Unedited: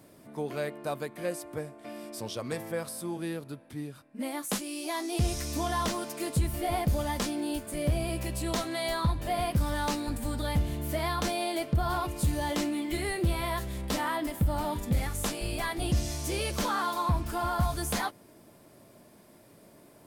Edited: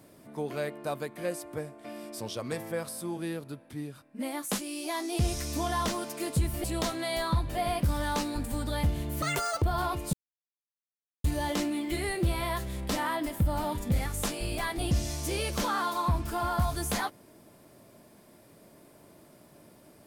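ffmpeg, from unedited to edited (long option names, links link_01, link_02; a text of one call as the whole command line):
ffmpeg -i in.wav -filter_complex "[0:a]asplit=5[link_01][link_02][link_03][link_04][link_05];[link_01]atrim=end=6.642[link_06];[link_02]atrim=start=8.358:end=10.944[link_07];[link_03]atrim=start=10.94:end=11.74,asetpts=PTS-STARTPTS,asetrate=87759,aresample=44100[link_08];[link_04]atrim=start=11.736:end=12.25,asetpts=PTS-STARTPTS,afade=type=out:start_time=0.51:duration=0.004:curve=hsin,apad=pad_dur=1.11[link_09];[link_05]atrim=start=12.25,asetpts=PTS-STARTPTS,afade=type=in:duration=0.004:curve=hsin[link_10];[link_06][link_07]acrossfade=duration=0.004:curve1=hsin:curve2=hsin[link_11];[link_11][link_08]acrossfade=duration=0.004:curve1=hsin:curve2=hsin[link_12];[link_09][link_10]concat=n=2:v=0:a=1[link_13];[link_12][link_13]acrossfade=duration=0.004:curve1=hsin:curve2=hsin" out.wav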